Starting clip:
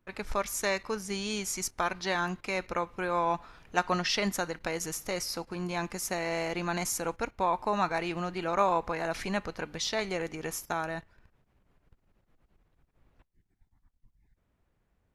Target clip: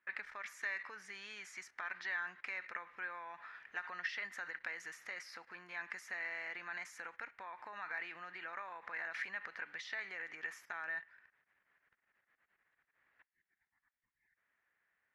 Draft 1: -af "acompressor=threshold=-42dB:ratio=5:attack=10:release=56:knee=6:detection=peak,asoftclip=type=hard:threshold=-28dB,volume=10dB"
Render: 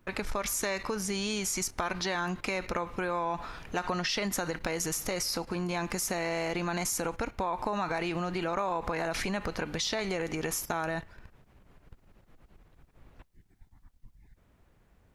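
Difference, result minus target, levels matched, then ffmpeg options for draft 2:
2000 Hz band -8.0 dB
-af "acompressor=threshold=-42dB:ratio=5:attack=10:release=56:knee=6:detection=peak,bandpass=f=1.8k:t=q:w=4.7:csg=0,asoftclip=type=hard:threshold=-28dB,volume=10dB"

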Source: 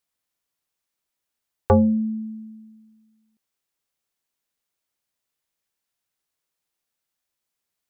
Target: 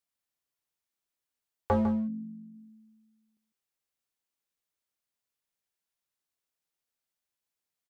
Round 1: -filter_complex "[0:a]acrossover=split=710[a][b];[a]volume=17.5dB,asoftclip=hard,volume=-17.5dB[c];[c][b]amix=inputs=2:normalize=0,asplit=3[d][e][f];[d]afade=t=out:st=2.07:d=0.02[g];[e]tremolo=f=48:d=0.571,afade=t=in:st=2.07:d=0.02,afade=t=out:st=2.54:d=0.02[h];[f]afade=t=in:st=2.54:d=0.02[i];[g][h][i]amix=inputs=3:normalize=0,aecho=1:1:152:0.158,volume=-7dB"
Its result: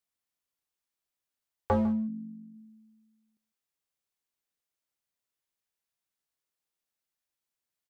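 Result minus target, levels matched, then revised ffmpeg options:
echo-to-direct -6.5 dB
-filter_complex "[0:a]acrossover=split=710[a][b];[a]volume=17.5dB,asoftclip=hard,volume=-17.5dB[c];[c][b]amix=inputs=2:normalize=0,asplit=3[d][e][f];[d]afade=t=out:st=2.07:d=0.02[g];[e]tremolo=f=48:d=0.571,afade=t=in:st=2.07:d=0.02,afade=t=out:st=2.54:d=0.02[h];[f]afade=t=in:st=2.54:d=0.02[i];[g][h][i]amix=inputs=3:normalize=0,aecho=1:1:152:0.335,volume=-7dB"

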